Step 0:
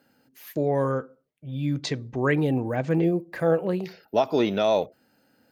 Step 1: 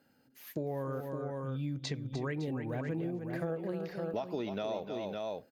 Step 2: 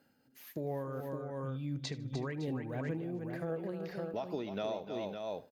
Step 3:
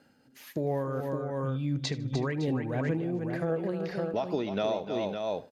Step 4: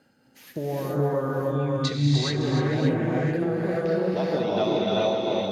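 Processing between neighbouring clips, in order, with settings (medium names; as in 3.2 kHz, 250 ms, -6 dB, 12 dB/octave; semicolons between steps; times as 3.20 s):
bass shelf 170 Hz +4.5 dB; on a send: multi-tap echo 302/559 ms -10/-9 dB; on the sum: compression, threshold -27 dBFS, peak gain reduction 11 dB; trim -6 dB
tremolo 2.8 Hz, depth 37%; feedback delay 76 ms, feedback 33%, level -19 dB
low-pass 9.8 kHz 12 dB/octave; trim +7.5 dB
dynamic bell 3.9 kHz, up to +5 dB, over -55 dBFS, Q 2.9; gated-style reverb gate 450 ms rising, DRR -5 dB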